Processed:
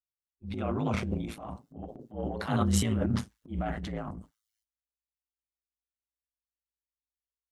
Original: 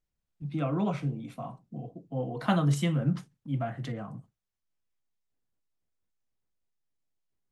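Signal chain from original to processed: transient shaper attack -8 dB, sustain +11 dB; spectral noise reduction 28 dB; ring modulator 55 Hz; trim +1.5 dB

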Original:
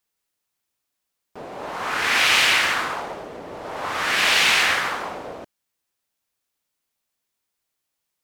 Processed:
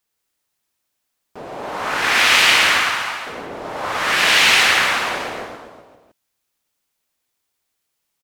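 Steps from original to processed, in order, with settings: 2.79–3.27 s: Butterworth band-pass 1.9 kHz, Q 0.69; reverse bouncing-ball echo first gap 110 ms, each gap 1.1×, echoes 5; trim +2.5 dB

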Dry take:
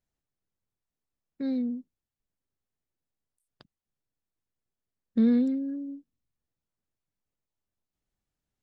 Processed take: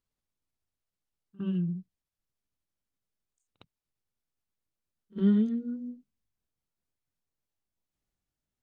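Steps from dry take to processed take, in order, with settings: pitch bend over the whole clip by -7 st ending unshifted; pre-echo 58 ms -22 dB

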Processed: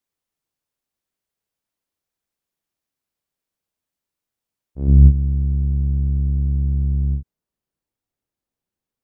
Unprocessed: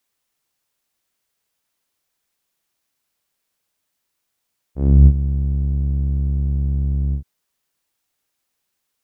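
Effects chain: tilt shelf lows +4 dB, about 740 Hz, from 4.87 s lows +8.5 dB; trim -7.5 dB

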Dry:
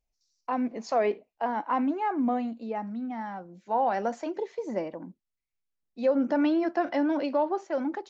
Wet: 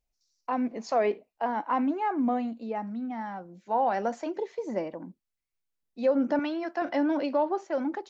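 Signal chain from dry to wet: 6.39–6.82 s: bass shelf 420 Hz -12 dB

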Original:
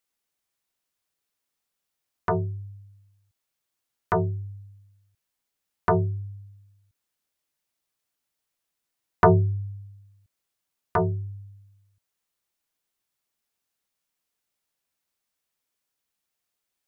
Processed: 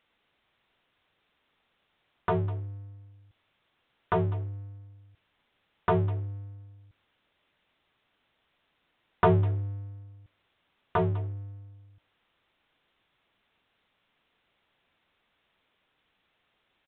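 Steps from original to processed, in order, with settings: power-law waveshaper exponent 0.7; speakerphone echo 200 ms, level -16 dB; resampled via 8 kHz; trim -6 dB

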